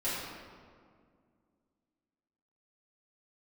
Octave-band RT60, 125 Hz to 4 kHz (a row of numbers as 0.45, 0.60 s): 2.6, 2.9, 2.2, 1.9, 1.5, 1.1 s